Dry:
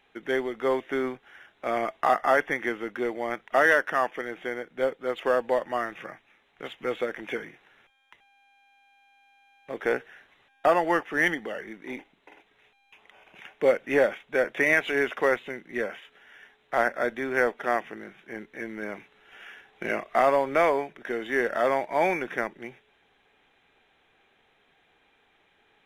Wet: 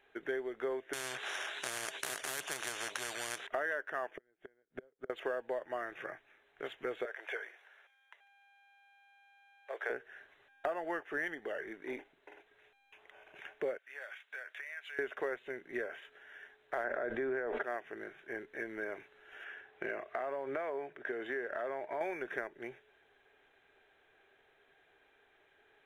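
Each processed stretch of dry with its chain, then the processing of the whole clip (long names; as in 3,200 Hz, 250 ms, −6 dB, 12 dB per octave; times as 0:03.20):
0:00.93–0:03.47: meter weighting curve ITU-R 468 + every bin compressed towards the loudest bin 10 to 1
0:04.11–0:05.10: low-shelf EQ 330 Hz +10 dB + gate with flip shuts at −24 dBFS, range −40 dB
0:07.05–0:09.90: high-pass filter 530 Hz 24 dB per octave + high-shelf EQ 11,000 Hz −4 dB + delay with a high-pass on its return 146 ms, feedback 55%, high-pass 4,200 Hz, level −13.5 dB
0:13.78–0:14.99: high-pass filter 1,500 Hz + downward compressor 5 to 1, threshold −40 dBFS
0:16.84–0:17.63: low-pass filter 1,300 Hz 6 dB per octave + envelope flattener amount 100%
0:19.44–0:22.01: bass and treble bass 0 dB, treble −8 dB + downward compressor 2.5 to 1, threshold −28 dBFS + high-pass filter 42 Hz
whole clip: thirty-one-band graphic EQ 200 Hz −11 dB, 400 Hz +8 dB, 630 Hz +6 dB, 1,600 Hz +8 dB, 5,000 Hz −6 dB; downward compressor 4 to 1, threshold −29 dBFS; level −6.5 dB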